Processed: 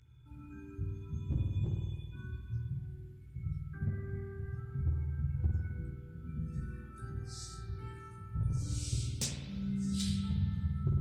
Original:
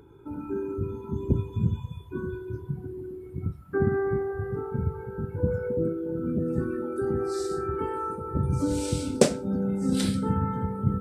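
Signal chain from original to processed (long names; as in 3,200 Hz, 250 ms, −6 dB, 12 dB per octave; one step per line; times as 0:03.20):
drawn EQ curve 130 Hz 0 dB, 410 Hz −29 dB, 1,100 Hz −16 dB, 2,000 Hz −2 dB, 6,500 Hz +3 dB, 11,000 Hz −7 dB
hard clipping −20 dBFS, distortion −17 dB
multi-voice chorus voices 2, 0.19 Hz, delay 16 ms, depth 3.1 ms
dynamic equaliser 1,800 Hz, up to −7 dB, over −55 dBFS, Q 0.8
spring reverb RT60 1.5 s, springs 51 ms, chirp 65 ms, DRR 1 dB
level −2 dB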